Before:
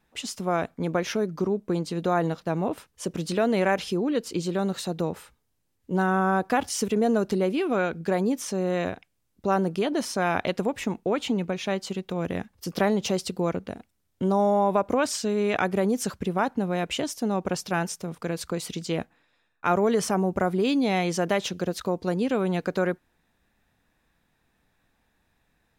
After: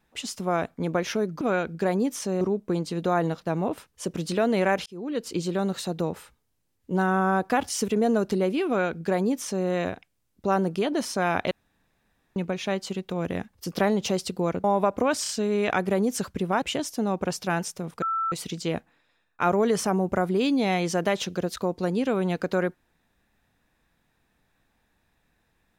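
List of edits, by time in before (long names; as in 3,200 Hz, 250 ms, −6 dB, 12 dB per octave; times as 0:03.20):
0:03.86–0:04.29: fade in
0:07.67–0:08.67: duplicate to 0:01.41
0:10.51–0:11.36: fill with room tone
0:13.64–0:14.56: remove
0:15.15: stutter 0.03 s, 3 plays
0:16.48–0:16.86: remove
0:18.26–0:18.56: beep over 1,330 Hz −23.5 dBFS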